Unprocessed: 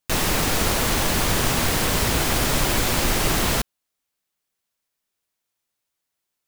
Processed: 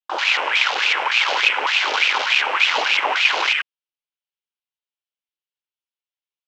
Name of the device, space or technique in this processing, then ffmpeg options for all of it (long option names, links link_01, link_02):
voice changer toy: -filter_complex "[0:a]aeval=exprs='val(0)*sin(2*PI*1600*n/s+1600*0.6/3.4*sin(2*PI*3.4*n/s))':channel_layout=same,highpass=560,equalizer=frequency=680:width_type=q:width=4:gain=-9,equalizer=frequency=1200:width_type=q:width=4:gain=-5,equalizer=frequency=1800:width_type=q:width=4:gain=-6,equalizer=frequency=3000:width_type=q:width=4:gain=5,equalizer=frequency=4600:width_type=q:width=4:gain=-4,lowpass=frequency=4900:width=0.5412,lowpass=frequency=4900:width=1.3066,afwtdn=0.0355,asettb=1/sr,asplit=3[link_01][link_02][link_03];[link_01]atrim=end=2.664[link_04];[link_02]atrim=start=2.66:end=3.08,asetpts=PTS-STARTPTS,afade=type=in:duration=0.004:curve=qsin,afade=type=out:start_time=0.416:duration=0.004:curve=qsin,lowshelf=frequency=220:gain=11.5[link_05];[link_03]atrim=start=3.076[link_06];[link_04][link_05]acrossfade=duration=0.004:curve1=hsin:curve2=qsin[link_07];[link_07][link_06]acrossfade=duration=0.004:curve1=qsin:curve2=hsin,volume=8.5dB"